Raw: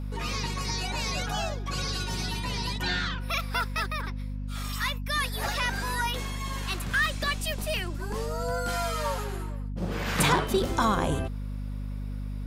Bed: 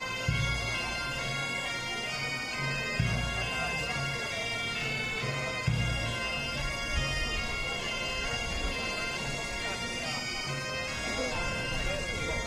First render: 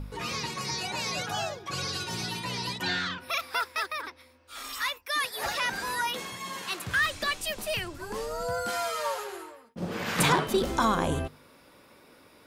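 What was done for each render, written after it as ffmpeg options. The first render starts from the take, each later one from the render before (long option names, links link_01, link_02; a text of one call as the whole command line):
ffmpeg -i in.wav -af "bandreject=frequency=50:width_type=h:width=4,bandreject=frequency=100:width_type=h:width=4,bandreject=frequency=150:width_type=h:width=4,bandreject=frequency=200:width_type=h:width=4,bandreject=frequency=250:width_type=h:width=4" out.wav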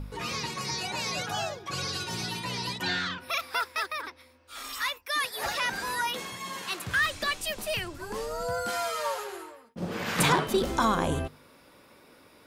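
ffmpeg -i in.wav -af anull out.wav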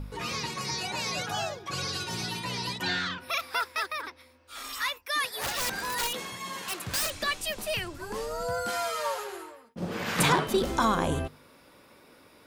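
ffmpeg -i in.wav -filter_complex "[0:a]asettb=1/sr,asplit=3[link_01][link_02][link_03];[link_01]atrim=end=5.404[link_04];[link_02]atrim=start=5.4:end=7.12,asetpts=PTS-STARTPTS,afade=type=in:duration=0.004:curve=qsin,afade=type=out:start_time=1.716:duration=0.004:curve=qsin,aeval=exprs='(mod(15.8*val(0)+1,2)-1)/15.8':channel_layout=same[link_05];[link_03]atrim=start=7.116[link_06];[link_04][link_05]acrossfade=duration=0.004:curve1=hsin:curve2=qsin[link_07];[link_07][link_06]acrossfade=duration=0.004:curve1=qsin:curve2=hsin" out.wav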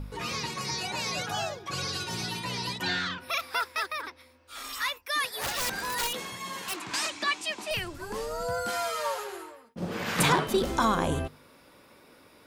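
ffmpeg -i in.wav -filter_complex "[0:a]asettb=1/sr,asplit=3[link_01][link_02][link_03];[link_01]atrim=end=6.764[link_04];[link_02]atrim=start=6.76:end=7.71,asetpts=PTS-STARTPTS,afade=type=in:duration=0.004:curve=qsin,afade=type=out:start_time=0.946:duration=0.004:curve=qsin,highpass=240,equalizer=frequency=310:width_type=q:width=4:gain=8,equalizer=frequency=530:width_type=q:width=4:gain=-10,equalizer=frequency=950:width_type=q:width=4:gain=8,equalizer=frequency=2300:width_type=q:width=4:gain=4,equalizer=frequency=9600:width_type=q:width=4:gain=-7,lowpass=frequency=9700:width=0.5412,lowpass=frequency=9700:width=1.3066[link_05];[link_03]atrim=start=7.706[link_06];[link_04][link_05]acrossfade=duration=0.004:curve1=hsin:curve2=qsin[link_07];[link_07][link_06]acrossfade=duration=0.004:curve1=qsin:curve2=hsin" out.wav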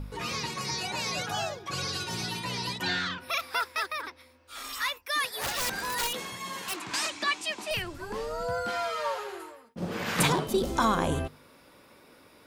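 ffmpeg -i in.wav -filter_complex "[0:a]asettb=1/sr,asplit=3[link_01][link_02][link_03];[link_01]atrim=end=4.584[link_04];[link_02]atrim=start=4.58:end=5.54,asetpts=PTS-STARTPTS,afade=type=in:duration=0.004:curve=qsin,afade=type=out:start_time=0.956:duration=0.004:curve=qsin,acrusher=bits=8:mode=log:mix=0:aa=0.000001[link_05];[link_03]atrim=start=5.536[link_06];[link_04][link_05]acrossfade=duration=0.004:curve1=hsin:curve2=qsin[link_07];[link_07][link_06]acrossfade=duration=0.004:curve1=qsin:curve2=hsin,asettb=1/sr,asplit=3[link_08][link_09][link_10];[link_08]atrim=end=7.824[link_11];[link_09]atrim=start=7.82:end=9.4,asetpts=PTS-STARTPTS,afade=type=in:duration=0.004:curve=qsin,afade=type=out:start_time=1.576:duration=0.004:curve=qsin,acrossover=split=5100[link_12][link_13];[link_13]acompressor=threshold=-55dB:ratio=4:attack=1:release=60[link_14];[link_12][link_14]amix=inputs=2:normalize=0[link_15];[link_10]atrim=start=9.396[link_16];[link_11][link_15]acrossfade=duration=0.004:curve1=hsin:curve2=qsin[link_17];[link_17][link_16]acrossfade=duration=0.004:curve1=qsin:curve2=hsin,asettb=1/sr,asplit=3[link_18][link_19][link_20];[link_18]atrim=end=10.274[link_21];[link_19]atrim=start=10.27:end=10.76,asetpts=PTS-STARTPTS,afade=type=in:duration=0.004:curve=qsin,afade=type=out:start_time=0.486:duration=0.004:curve=qsin,equalizer=frequency=1700:width_type=o:width=1.6:gain=-9[link_22];[link_20]atrim=start=10.756[link_23];[link_21][link_22]acrossfade=duration=0.004:curve1=hsin:curve2=qsin[link_24];[link_24][link_23]acrossfade=duration=0.004:curve1=qsin:curve2=hsin" out.wav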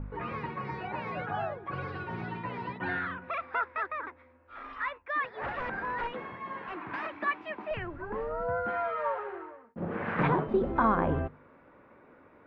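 ffmpeg -i in.wav -af "lowpass=frequency=1900:width=0.5412,lowpass=frequency=1900:width=1.3066,bandreject=frequency=60:width_type=h:width=6,bandreject=frequency=120:width_type=h:width=6,bandreject=frequency=180:width_type=h:width=6" out.wav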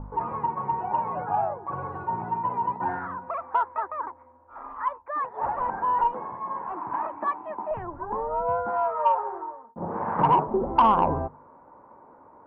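ffmpeg -i in.wav -af "lowpass=frequency=930:width_type=q:width=5.4,asoftclip=type=tanh:threshold=-9dB" out.wav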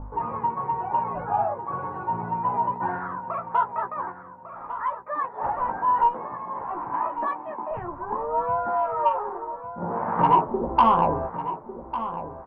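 ffmpeg -i in.wav -filter_complex "[0:a]asplit=2[link_01][link_02];[link_02]adelay=17,volume=-5dB[link_03];[link_01][link_03]amix=inputs=2:normalize=0,asplit=2[link_04][link_05];[link_05]adelay=1150,lowpass=frequency=3000:poles=1,volume=-11.5dB,asplit=2[link_06][link_07];[link_07]adelay=1150,lowpass=frequency=3000:poles=1,volume=0.29,asplit=2[link_08][link_09];[link_09]adelay=1150,lowpass=frequency=3000:poles=1,volume=0.29[link_10];[link_04][link_06][link_08][link_10]amix=inputs=4:normalize=0" out.wav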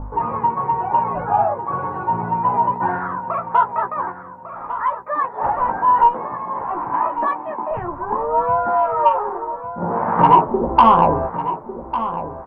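ffmpeg -i in.wav -af "volume=7dB,alimiter=limit=-1dB:level=0:latency=1" out.wav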